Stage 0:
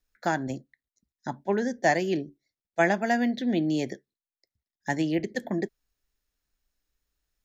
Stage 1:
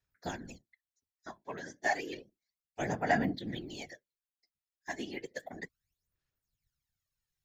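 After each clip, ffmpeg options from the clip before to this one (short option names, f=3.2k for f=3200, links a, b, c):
-af "aphaser=in_gain=1:out_gain=1:delay=3.1:decay=0.74:speed=0.32:type=sinusoidal,tiltshelf=f=690:g=-4.5,afftfilt=real='hypot(re,im)*cos(2*PI*random(0))':imag='hypot(re,im)*sin(2*PI*random(1))':win_size=512:overlap=0.75,volume=-8dB"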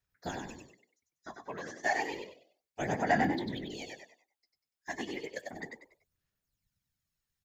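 -filter_complex "[0:a]asplit=5[a][b][c][d][e];[b]adelay=96,afreqshift=60,volume=-4.5dB[f];[c]adelay=192,afreqshift=120,volume=-14.4dB[g];[d]adelay=288,afreqshift=180,volume=-24.3dB[h];[e]adelay=384,afreqshift=240,volume=-34.2dB[i];[a][f][g][h][i]amix=inputs=5:normalize=0"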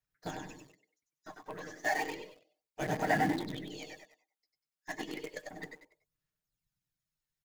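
-filter_complex "[0:a]aecho=1:1:6.5:0.57,asplit=2[a][b];[b]acrusher=bits=6:dc=4:mix=0:aa=0.000001,volume=-6dB[c];[a][c]amix=inputs=2:normalize=0,volume=-6dB"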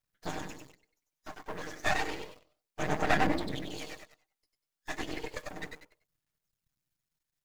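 -af "aeval=exprs='max(val(0),0)':c=same,volume=6.5dB"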